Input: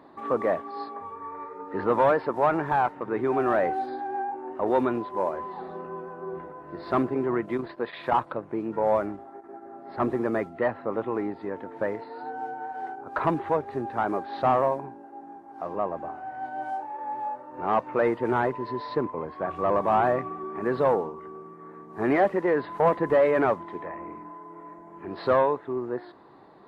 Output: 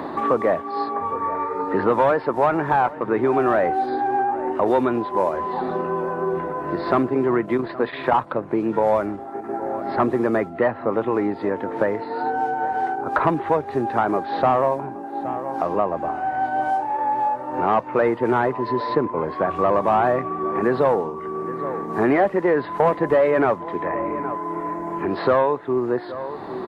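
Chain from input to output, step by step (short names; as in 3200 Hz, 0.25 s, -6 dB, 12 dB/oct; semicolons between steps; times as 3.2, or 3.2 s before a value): outdoor echo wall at 140 m, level -22 dB; three-band squash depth 70%; gain +5.5 dB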